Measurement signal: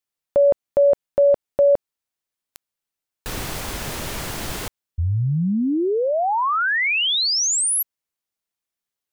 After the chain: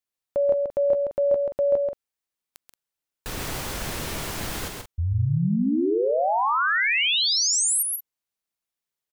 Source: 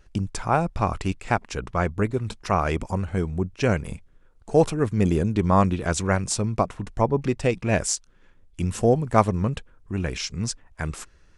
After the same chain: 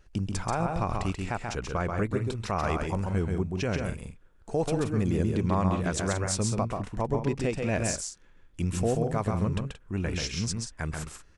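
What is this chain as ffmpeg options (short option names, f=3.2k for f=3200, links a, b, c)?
-af "alimiter=limit=-14.5dB:level=0:latency=1:release=93,aecho=1:1:134.1|177.8:0.631|0.282,volume=-3.5dB"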